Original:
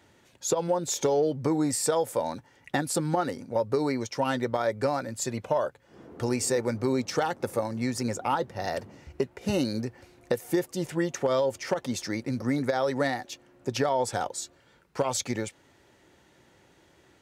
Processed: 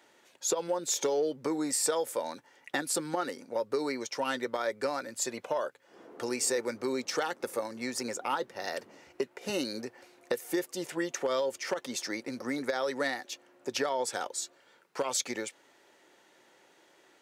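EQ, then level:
high-pass filter 380 Hz 12 dB per octave
dynamic equaliser 740 Hz, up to −7 dB, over −42 dBFS, Q 1.4
0.0 dB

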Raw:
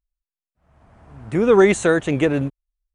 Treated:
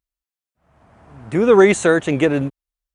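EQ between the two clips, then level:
high-pass filter 120 Hz 6 dB per octave
+2.5 dB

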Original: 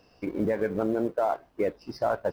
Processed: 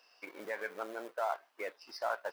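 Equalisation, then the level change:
high-pass filter 1,100 Hz 12 dB per octave
0.0 dB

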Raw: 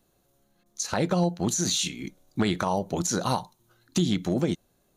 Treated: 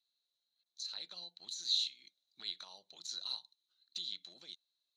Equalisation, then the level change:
resonant band-pass 4,000 Hz, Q 9.8
+1.0 dB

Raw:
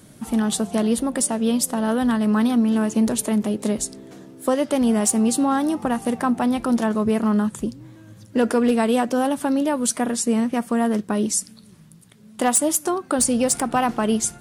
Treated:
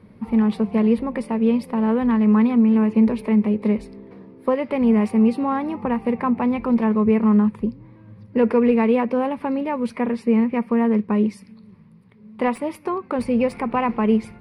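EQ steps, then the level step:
EQ curve with evenly spaced ripples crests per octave 0.88, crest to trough 9 dB
dynamic equaliser 2,400 Hz, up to +7 dB, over −48 dBFS, Q 2.4
high-frequency loss of the air 470 metres
0.0 dB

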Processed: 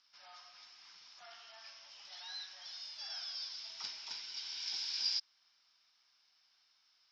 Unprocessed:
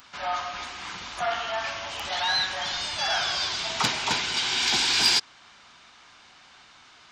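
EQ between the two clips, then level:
resonant band-pass 5,300 Hz, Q 13
high-frequency loss of the air 170 metres
spectral tilt −2.5 dB per octave
+8.5 dB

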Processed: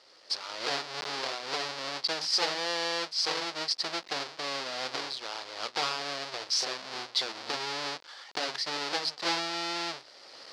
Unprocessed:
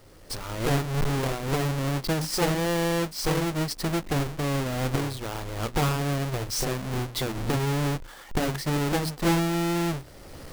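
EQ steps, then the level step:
high-pass filter 630 Hz 12 dB per octave
low-pass with resonance 4,700 Hz, resonance Q 3.5
−3.0 dB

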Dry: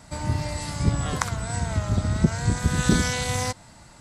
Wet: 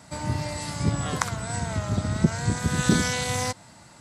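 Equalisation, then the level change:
high-pass filter 99 Hz 12 dB per octave
0.0 dB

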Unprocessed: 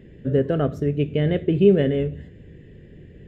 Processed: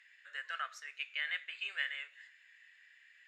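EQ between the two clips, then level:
Bessel high-pass filter 2,300 Hz, order 6
high-frequency loss of the air 70 metres
parametric band 3,200 Hz −9.5 dB 0.51 octaves
+8.5 dB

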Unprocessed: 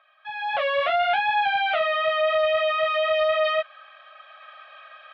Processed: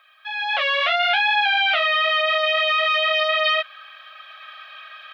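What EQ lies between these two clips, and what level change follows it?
high-pass filter 770 Hz 6 dB per octave
spectral tilt +4 dB per octave
+3.5 dB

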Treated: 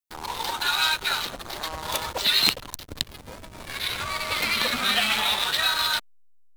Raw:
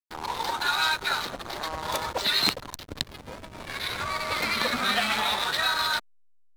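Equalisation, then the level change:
low-shelf EQ 68 Hz +6.5 dB
dynamic equaliser 2,900 Hz, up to +7 dB, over −42 dBFS, Q 2.1
high-shelf EQ 6,400 Hz +9.5 dB
−1.5 dB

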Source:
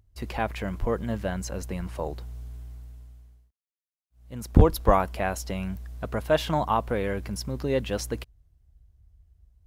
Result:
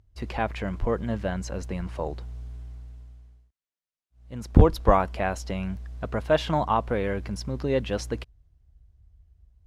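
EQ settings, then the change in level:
high-frequency loss of the air 60 metres
+1.0 dB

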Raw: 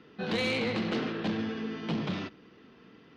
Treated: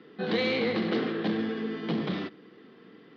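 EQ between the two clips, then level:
high-frequency loss of the air 140 metres
loudspeaker in its box 210–5,300 Hz, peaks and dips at 250 Hz −3 dB, 620 Hz −5 dB, 930 Hz −7 dB, 1,400 Hz −5 dB, 2,600 Hz −8 dB
+6.5 dB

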